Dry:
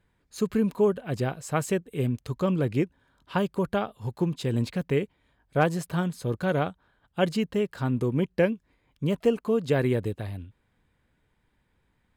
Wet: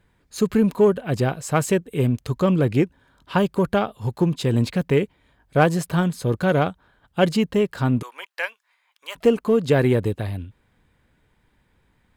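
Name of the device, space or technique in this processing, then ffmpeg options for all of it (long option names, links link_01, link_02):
parallel distortion: -filter_complex "[0:a]asplit=3[link_01][link_02][link_03];[link_01]afade=type=out:start_time=8.01:duration=0.02[link_04];[link_02]highpass=frequency=890:width=0.5412,highpass=frequency=890:width=1.3066,afade=type=in:start_time=8.01:duration=0.02,afade=type=out:start_time=9.15:duration=0.02[link_05];[link_03]afade=type=in:start_time=9.15:duration=0.02[link_06];[link_04][link_05][link_06]amix=inputs=3:normalize=0,asplit=2[link_07][link_08];[link_08]asoftclip=type=hard:threshold=-24.5dB,volume=-12dB[link_09];[link_07][link_09]amix=inputs=2:normalize=0,volume=5dB"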